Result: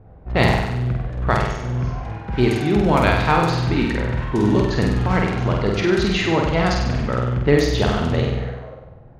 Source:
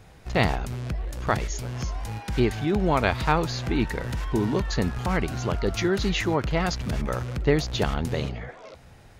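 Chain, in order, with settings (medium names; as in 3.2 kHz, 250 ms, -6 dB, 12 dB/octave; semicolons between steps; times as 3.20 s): level-controlled noise filter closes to 680 Hz, open at -17.5 dBFS; flutter echo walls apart 8.3 m, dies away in 0.93 s; trim +3.5 dB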